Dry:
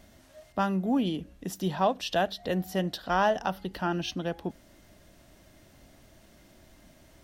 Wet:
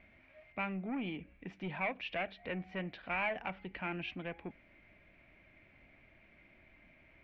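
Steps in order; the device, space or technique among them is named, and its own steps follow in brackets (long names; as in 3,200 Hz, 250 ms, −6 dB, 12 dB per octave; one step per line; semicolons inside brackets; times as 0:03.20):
overdriven synthesiser ladder filter (soft clipping −24 dBFS, distortion −11 dB; transistor ladder low-pass 2,400 Hz, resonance 85%)
level +3.5 dB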